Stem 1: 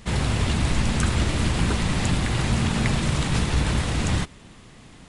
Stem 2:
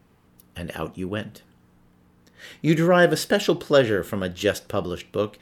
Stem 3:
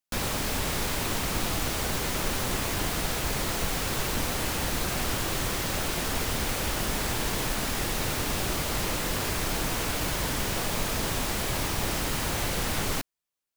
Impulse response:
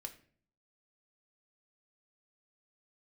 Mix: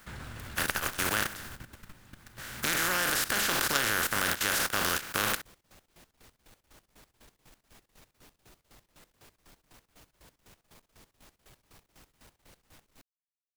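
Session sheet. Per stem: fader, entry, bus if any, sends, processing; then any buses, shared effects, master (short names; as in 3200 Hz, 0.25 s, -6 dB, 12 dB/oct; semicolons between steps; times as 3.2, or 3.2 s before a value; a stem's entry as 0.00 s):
-16.0 dB, 0.00 s, bus A, send -7 dB, auto duck -15 dB, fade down 1.80 s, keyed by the second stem
+2.5 dB, 0.00 s, bus A, send -9 dB, spectral contrast lowered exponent 0.23; sustainer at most 72 dB/s
-16.5 dB, 0.00 s, no bus, no send, soft clip -31.5 dBFS, distortion -9 dB; dB-linear tremolo 4 Hz, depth 20 dB
bus A: 0.0 dB, bell 1500 Hz +12.5 dB 0.73 oct; compressor 2:1, threshold -24 dBFS, peak gain reduction 11 dB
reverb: on, RT60 0.50 s, pre-delay 3 ms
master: level quantiser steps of 14 dB; core saturation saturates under 750 Hz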